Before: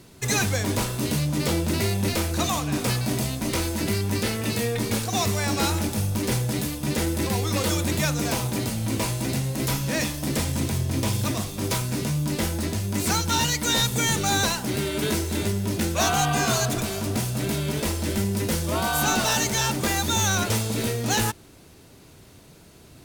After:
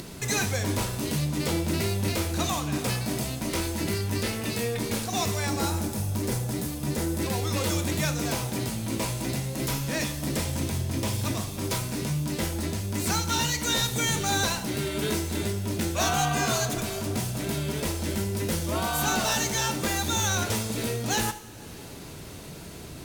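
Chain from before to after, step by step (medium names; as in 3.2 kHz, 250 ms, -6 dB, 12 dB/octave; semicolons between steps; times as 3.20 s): 5.49–7.21 s: dynamic bell 2.8 kHz, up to -6 dB, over -41 dBFS, Q 0.79; two-slope reverb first 0.71 s, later 2.4 s, DRR 9 dB; upward compressor, threshold -26 dBFS; trim -3.5 dB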